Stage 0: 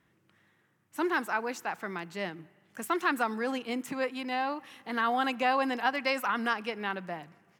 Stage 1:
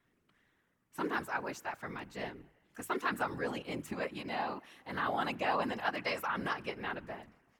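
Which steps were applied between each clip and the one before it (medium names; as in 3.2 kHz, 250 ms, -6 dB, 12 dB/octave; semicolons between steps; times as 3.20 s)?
whisper effect; hum notches 50/100/150 Hz; trim -5.5 dB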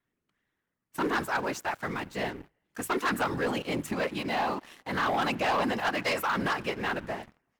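waveshaping leveller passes 3; trim -2 dB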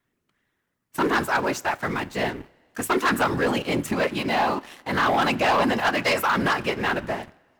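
two-slope reverb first 0.24 s, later 1.8 s, from -18 dB, DRR 16 dB; trim +6.5 dB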